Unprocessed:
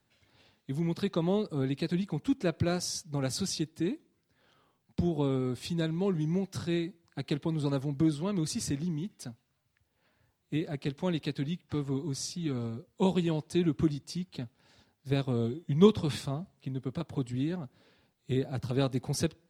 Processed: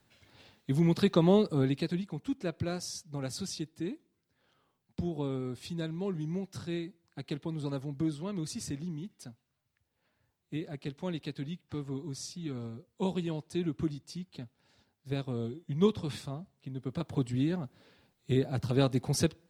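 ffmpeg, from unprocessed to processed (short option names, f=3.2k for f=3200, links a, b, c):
-af "volume=12dB,afade=t=out:st=1.43:d=0.61:silence=0.316228,afade=t=in:st=16.7:d=0.44:silence=0.446684"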